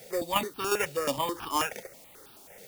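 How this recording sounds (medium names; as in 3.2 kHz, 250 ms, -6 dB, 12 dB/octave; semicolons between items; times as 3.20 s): aliases and images of a low sample rate 4.1 kHz, jitter 0%; tremolo saw down 2.8 Hz, depth 55%; a quantiser's noise floor 10-bit, dither triangular; notches that jump at a steady rate 9.3 Hz 300–2000 Hz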